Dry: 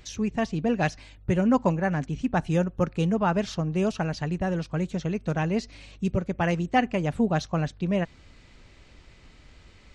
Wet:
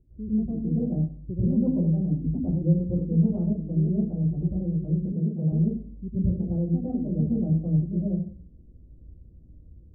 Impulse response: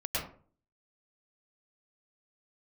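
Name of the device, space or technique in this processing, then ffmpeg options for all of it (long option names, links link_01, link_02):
next room: -filter_complex "[0:a]lowpass=frequency=370:width=0.5412,lowpass=frequency=370:width=1.3066[link_01];[1:a]atrim=start_sample=2205[link_02];[link_01][link_02]afir=irnorm=-1:irlink=0,asettb=1/sr,asplit=3[link_03][link_04][link_05];[link_03]atrim=end=5.124[link_06];[link_04]atrim=start=5.12:end=5.52,asetpts=PTS-STARTPTS,afade=type=in:duration=0.004:curve=qsin,afade=type=out:start_time=0.396:duration=0.004:curve=qsin,highpass=frequency=100:width=0.5412,highpass=frequency=100:width=1.3066[link_07];[link_05]atrim=start=5.516[link_08];[link_06][link_07]acrossfade=duration=0.004:curve1=hsin:curve2=qsin[link_09];[link_09][link_08]acrossfade=duration=0.004:curve1=qsin:curve2=hsin,volume=-5.5dB"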